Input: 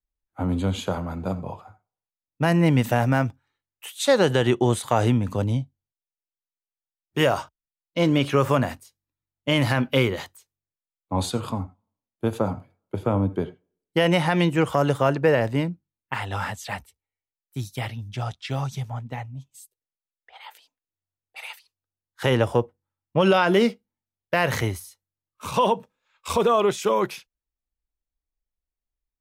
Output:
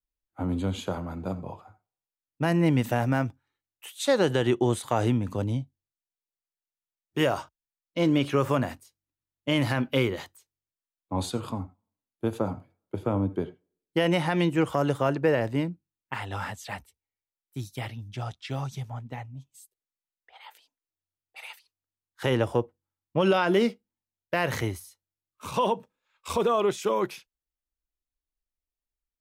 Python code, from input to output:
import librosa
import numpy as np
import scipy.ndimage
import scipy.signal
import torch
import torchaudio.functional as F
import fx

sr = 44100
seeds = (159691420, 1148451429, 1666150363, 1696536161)

y = fx.peak_eq(x, sr, hz=320.0, db=4.0, octaves=0.55)
y = y * librosa.db_to_amplitude(-5.0)